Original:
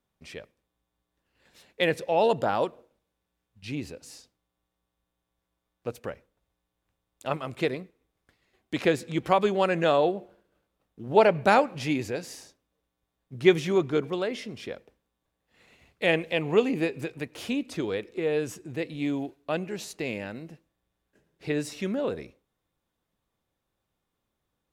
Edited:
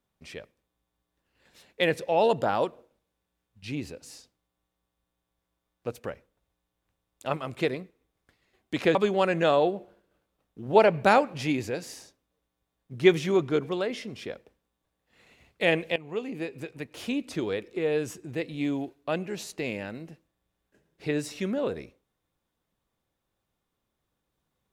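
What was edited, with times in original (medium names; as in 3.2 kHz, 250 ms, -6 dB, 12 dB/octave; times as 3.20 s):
8.95–9.36 s: delete
16.37–17.67 s: fade in, from -16 dB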